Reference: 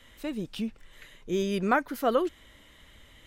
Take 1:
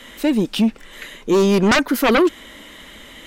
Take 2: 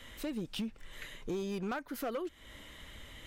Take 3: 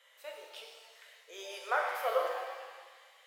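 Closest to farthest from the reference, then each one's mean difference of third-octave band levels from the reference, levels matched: 1, 2, 3; 4.0, 8.5, 11.0 decibels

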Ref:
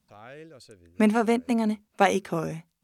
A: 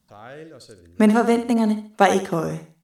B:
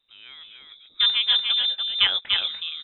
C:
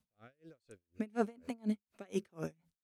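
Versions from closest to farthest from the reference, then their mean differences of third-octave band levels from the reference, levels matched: A, C, B; 2.5, 8.5, 14.0 decibels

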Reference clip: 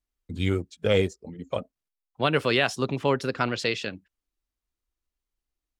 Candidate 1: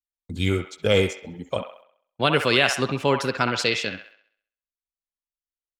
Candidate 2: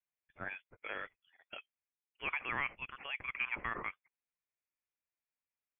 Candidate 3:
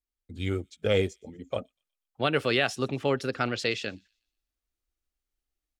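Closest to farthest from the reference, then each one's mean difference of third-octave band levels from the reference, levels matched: 3, 1, 2; 1.0, 4.0, 13.0 decibels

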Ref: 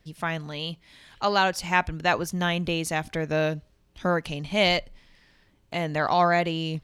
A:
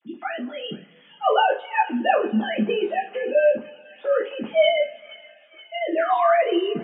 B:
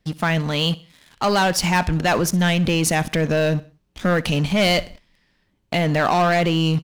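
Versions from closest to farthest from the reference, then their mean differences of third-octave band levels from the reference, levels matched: B, A; 5.5, 13.5 decibels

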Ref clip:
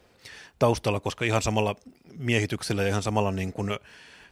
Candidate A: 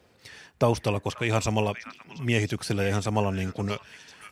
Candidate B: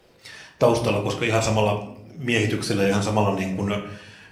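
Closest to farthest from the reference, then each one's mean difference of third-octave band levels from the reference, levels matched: A, B; 2.0, 3.5 decibels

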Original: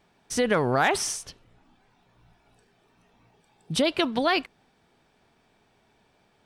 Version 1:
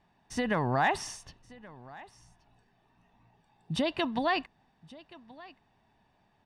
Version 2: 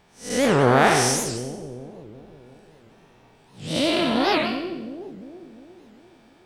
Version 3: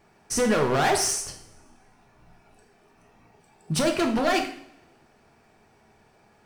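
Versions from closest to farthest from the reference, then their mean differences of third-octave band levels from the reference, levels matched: 1, 3, 2; 3.5, 7.0, 9.5 decibels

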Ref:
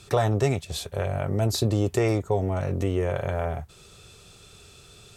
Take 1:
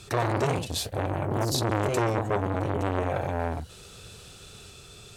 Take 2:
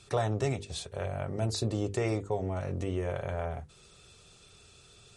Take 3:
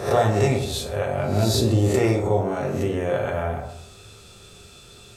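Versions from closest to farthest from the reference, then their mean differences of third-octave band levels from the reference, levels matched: 2, 3, 1; 2.0, 4.0, 5.5 decibels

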